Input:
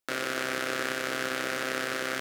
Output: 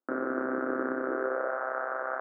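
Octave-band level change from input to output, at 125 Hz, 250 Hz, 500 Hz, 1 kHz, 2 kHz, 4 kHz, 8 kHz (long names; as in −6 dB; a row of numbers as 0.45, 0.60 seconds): below −10 dB, +4.0 dB, +3.0 dB, +1.5 dB, −5.5 dB, below −40 dB, below −40 dB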